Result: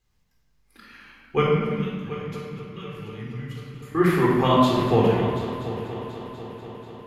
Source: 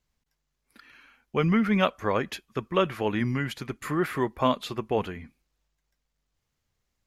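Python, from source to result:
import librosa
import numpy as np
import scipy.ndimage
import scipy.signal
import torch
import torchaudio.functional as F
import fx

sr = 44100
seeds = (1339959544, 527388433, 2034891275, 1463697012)

y = fx.tone_stack(x, sr, knobs='6-0-2', at=(1.42, 3.95))
y = fx.echo_heads(y, sr, ms=244, heads='first and third', feedback_pct=64, wet_db=-15)
y = fx.room_shoebox(y, sr, seeds[0], volume_m3=1600.0, walls='mixed', distance_m=3.9)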